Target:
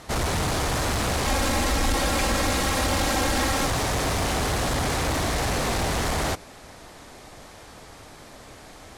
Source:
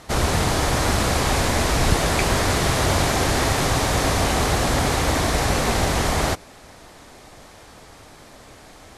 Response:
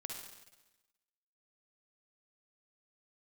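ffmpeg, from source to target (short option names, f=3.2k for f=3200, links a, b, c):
-filter_complex "[0:a]asoftclip=type=tanh:threshold=-21dB,asettb=1/sr,asplit=3[a][b][c];[a]atrim=end=1.264[d];[b]atrim=start=1.26:end=3.67,asetpts=PTS-STARTPTS,afade=t=in:d=0.004:c=qsin,afade=t=out:st=2.406:d=0.004:c=qsin,aecho=1:1:3.7:0.67,atrim=end_sample=106281[e];[c]atrim=start=3.666[f];[d][e]acrossfade=d=0.004:c1=hsin:c2=qsin[g];[g][f]acrossfade=d=0.004:c1=qsin:c2=hsin"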